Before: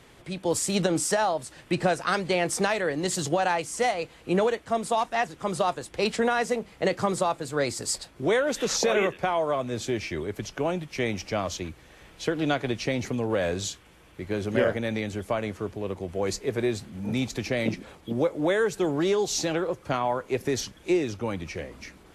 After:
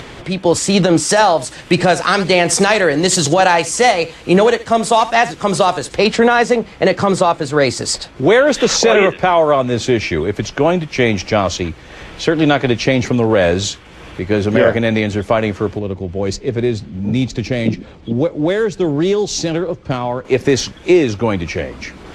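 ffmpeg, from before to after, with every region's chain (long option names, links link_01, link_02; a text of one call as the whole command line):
ffmpeg -i in.wav -filter_complex "[0:a]asettb=1/sr,asplit=3[link_01][link_02][link_03];[link_01]atrim=end=1.094[link_04];[link_02]atrim=start=1.09:end=5.97,asetpts=PTS-STARTPTS,afade=type=in:duration=0.004:curve=qsin,afade=type=out:start_time=4.876:duration=0.004:curve=qsin,aemphasis=mode=production:type=cd,aecho=1:1:74:0.141,atrim=end_sample=215208[link_05];[link_03]atrim=start=5.966[link_06];[link_04][link_05]acrossfade=duration=0.004:curve1=hsin:curve2=qsin[link_07];[link_07][link_06]acrossfade=duration=0.004:curve1=qsin:curve2=hsin,asettb=1/sr,asplit=3[link_08][link_09][link_10];[link_08]atrim=end=15.794[link_11];[link_09]atrim=start=15.79:end=20.25,asetpts=PTS-STARTPTS,afade=type=in:duration=0.004:curve=qsin,afade=type=out:start_time=4.456:duration=0.004:curve=qsin,adynamicsmooth=sensitivity=6.5:basefreq=5100,equalizer=frequency=1200:width=0.36:gain=-10[link_12];[link_10]atrim=start=20.246[link_13];[link_11][link_12]acrossfade=duration=0.004:curve1=hsin:curve2=qsin[link_14];[link_14][link_13]acrossfade=duration=0.004:curve1=qsin:curve2=hsin,lowpass=6000,acompressor=mode=upward:threshold=-40dB:ratio=2.5,alimiter=level_in=15dB:limit=-1dB:release=50:level=0:latency=1,volume=-1dB" out.wav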